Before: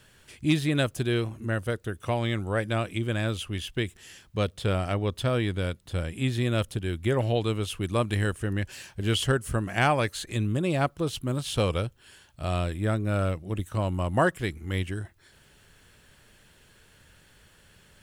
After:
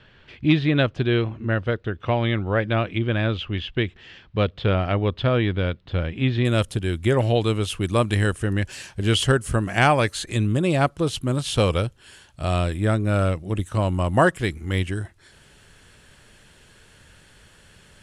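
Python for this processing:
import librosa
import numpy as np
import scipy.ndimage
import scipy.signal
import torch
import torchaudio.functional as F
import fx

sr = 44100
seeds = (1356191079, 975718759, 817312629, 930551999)

y = fx.lowpass(x, sr, hz=fx.steps((0.0, 3800.0), (6.45, 11000.0)), slope=24)
y = y * librosa.db_to_amplitude(5.5)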